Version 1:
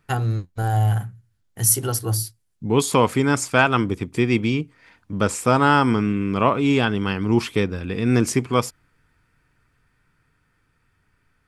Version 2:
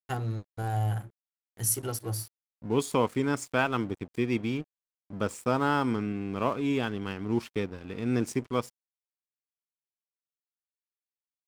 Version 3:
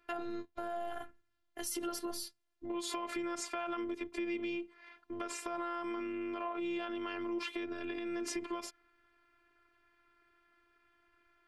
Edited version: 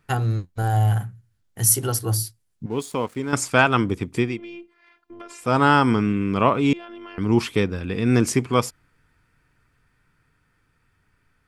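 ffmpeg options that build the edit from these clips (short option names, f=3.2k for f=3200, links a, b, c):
-filter_complex "[2:a]asplit=2[a][b];[0:a]asplit=4[c][d][e][f];[c]atrim=end=2.662[g];[1:a]atrim=start=2.658:end=3.332[h];[d]atrim=start=3.328:end=4.41[i];[a]atrim=start=4.17:end=5.59[j];[e]atrim=start=5.35:end=6.732[k];[b]atrim=start=6.728:end=7.182[l];[f]atrim=start=7.178[m];[g][h]acrossfade=d=0.004:c1=hsin:c2=hsin[n];[n][i]acrossfade=d=0.004:c1=hsin:c2=hsin[o];[o][j]acrossfade=d=0.24:c1=tri:c2=tri[p];[p][k]acrossfade=d=0.24:c1=tri:c2=tri[q];[q][l]acrossfade=d=0.004:c1=hsin:c2=hsin[r];[r][m]acrossfade=d=0.004:c1=hsin:c2=hsin"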